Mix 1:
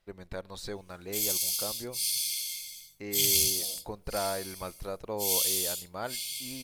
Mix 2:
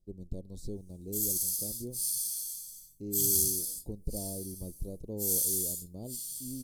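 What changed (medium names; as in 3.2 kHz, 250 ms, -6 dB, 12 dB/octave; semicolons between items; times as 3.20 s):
first voice: add tilt EQ -1.5 dB/octave; second voice: send off; master: add Chebyshev band-stop 300–7800 Hz, order 2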